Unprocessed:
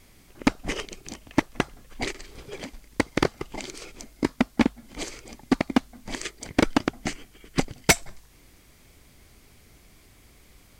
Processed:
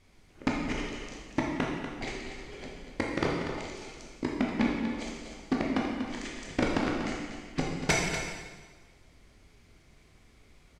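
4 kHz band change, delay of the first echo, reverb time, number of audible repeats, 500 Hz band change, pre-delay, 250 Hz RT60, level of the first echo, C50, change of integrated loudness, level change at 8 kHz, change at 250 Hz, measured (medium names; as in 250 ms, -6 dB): -6.0 dB, 241 ms, 1.4 s, 1, -3.5 dB, 7 ms, 1.4 s, -9.5 dB, 0.0 dB, -5.0 dB, -8.5 dB, -4.0 dB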